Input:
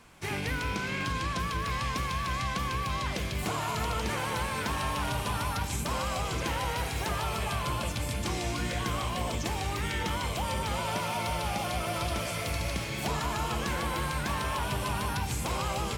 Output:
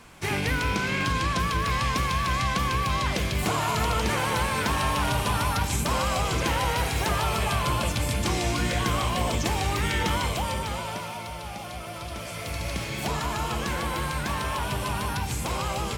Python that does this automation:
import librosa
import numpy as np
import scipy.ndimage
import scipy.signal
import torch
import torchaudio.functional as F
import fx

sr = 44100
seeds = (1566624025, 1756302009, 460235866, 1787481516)

y = fx.gain(x, sr, db=fx.line((10.18, 6.0), (11.29, -5.0), (12.03, -5.0), (12.82, 2.5)))